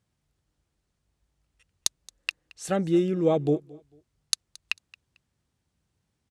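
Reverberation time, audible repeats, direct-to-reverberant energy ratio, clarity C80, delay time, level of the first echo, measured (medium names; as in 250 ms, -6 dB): no reverb, 2, no reverb, no reverb, 223 ms, -23.0 dB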